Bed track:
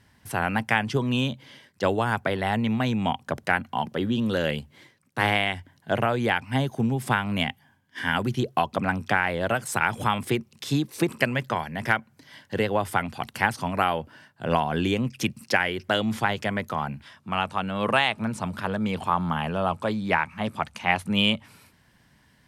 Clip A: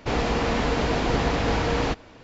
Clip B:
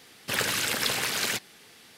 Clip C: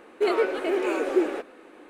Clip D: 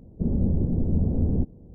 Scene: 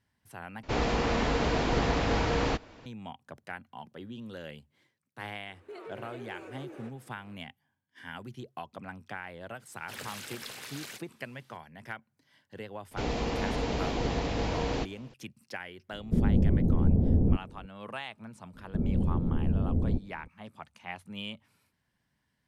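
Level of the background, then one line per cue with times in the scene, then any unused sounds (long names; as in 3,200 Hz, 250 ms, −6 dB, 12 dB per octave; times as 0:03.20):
bed track −17.5 dB
0:00.63: overwrite with A −4 dB
0:05.48: mix in C −13.5 dB + downward compressor 3 to 1, threshold −30 dBFS
0:09.60: mix in B −15.5 dB
0:12.91: mix in A −6.5 dB + parametric band 1,400 Hz −6 dB 1.1 octaves
0:15.92: mix in D −0.5 dB
0:18.54: mix in D −4.5 dB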